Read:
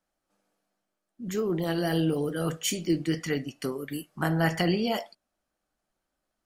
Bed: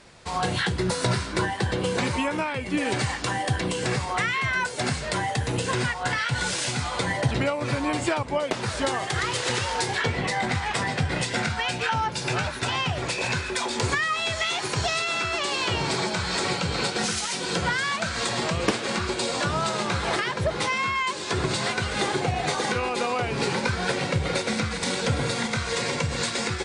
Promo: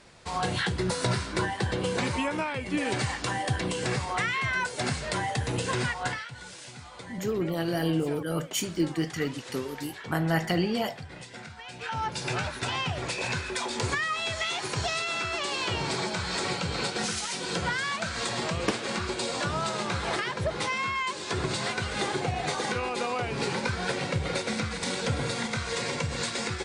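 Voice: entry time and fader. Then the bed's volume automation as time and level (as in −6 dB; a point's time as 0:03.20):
5.90 s, −1.0 dB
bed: 0:06.06 −3 dB
0:06.32 −17 dB
0:11.64 −17 dB
0:12.05 −4 dB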